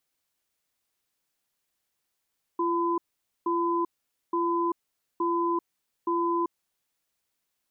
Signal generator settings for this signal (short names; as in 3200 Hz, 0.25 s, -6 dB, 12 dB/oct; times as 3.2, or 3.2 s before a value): cadence 342 Hz, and 1010 Hz, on 0.39 s, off 0.48 s, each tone -26 dBFS 3.90 s